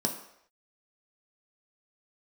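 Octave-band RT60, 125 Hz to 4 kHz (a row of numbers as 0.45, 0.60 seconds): 0.45, 0.55, 0.75, 0.70, 0.70, 0.70 seconds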